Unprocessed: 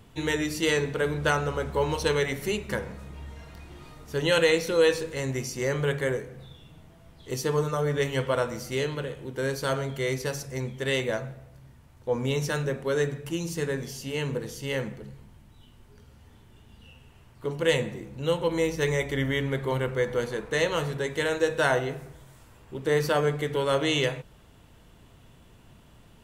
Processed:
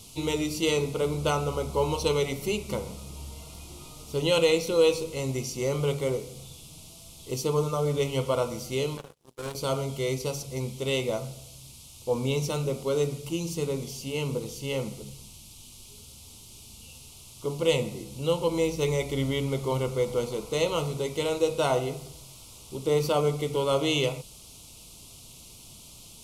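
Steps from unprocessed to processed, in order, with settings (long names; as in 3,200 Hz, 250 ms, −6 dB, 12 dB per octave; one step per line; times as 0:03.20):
noise in a band 2,600–12,000 Hz −50 dBFS
Butterworth band-reject 1,700 Hz, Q 1.9
0:08.97–0:09.55: power curve on the samples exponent 3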